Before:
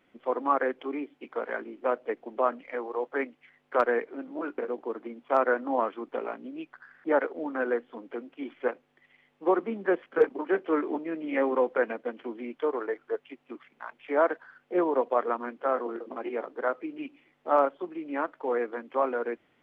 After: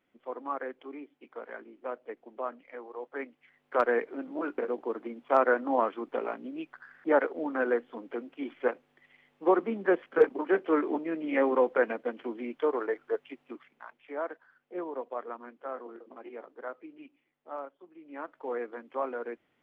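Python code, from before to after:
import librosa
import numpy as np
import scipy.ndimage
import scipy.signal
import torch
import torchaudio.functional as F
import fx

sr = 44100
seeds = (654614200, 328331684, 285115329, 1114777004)

y = fx.gain(x, sr, db=fx.line((2.95, -9.5), (4.03, 0.5), (13.4, 0.5), (14.16, -11.0), (16.87, -11.0), (17.81, -18.5), (18.39, -6.0)))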